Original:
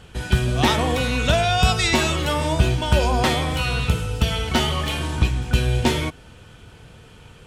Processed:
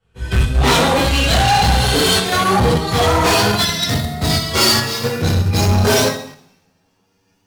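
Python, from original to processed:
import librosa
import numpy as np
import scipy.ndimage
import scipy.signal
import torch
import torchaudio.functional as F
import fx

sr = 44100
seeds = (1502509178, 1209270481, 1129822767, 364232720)

p1 = fx.pitch_glide(x, sr, semitones=11.5, runs='starting unshifted')
p2 = fx.rev_double_slope(p1, sr, seeds[0], early_s=0.65, late_s=2.0, knee_db=-18, drr_db=-9.0)
p3 = fx.level_steps(p2, sr, step_db=16)
p4 = p2 + F.gain(torch.from_numpy(p3), -1.0).numpy()
p5 = fx.spec_repair(p4, sr, seeds[1], start_s=1.56, length_s=0.54, low_hz=590.0, high_hz=9800.0, source='both')
p6 = np.clip(p5, -10.0 ** (-9.0 / 20.0), 10.0 ** (-9.0 / 20.0))
p7 = fx.band_widen(p6, sr, depth_pct=100)
y = F.gain(torch.from_numpy(p7), -2.0).numpy()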